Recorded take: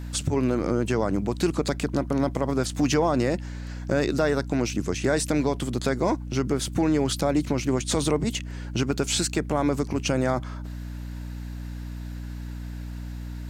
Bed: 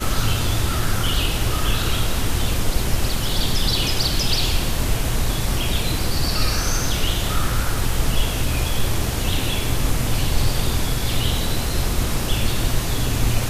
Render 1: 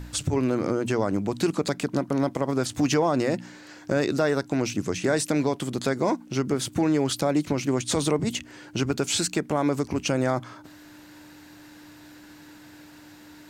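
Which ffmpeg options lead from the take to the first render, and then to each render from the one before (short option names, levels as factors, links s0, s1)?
-af "bandreject=f=60:t=h:w=4,bandreject=f=120:t=h:w=4,bandreject=f=180:t=h:w=4,bandreject=f=240:t=h:w=4"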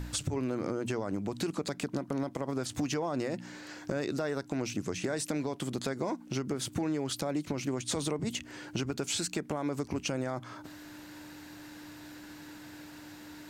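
-af "alimiter=limit=0.178:level=0:latency=1:release=102,acompressor=threshold=0.0224:ratio=2.5"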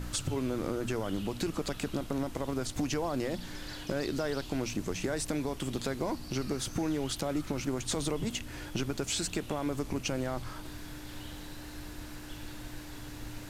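-filter_complex "[1:a]volume=0.0596[s0];[0:a][s0]amix=inputs=2:normalize=0"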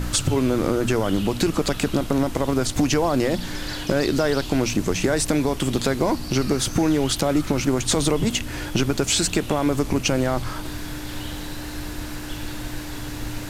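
-af "volume=3.98"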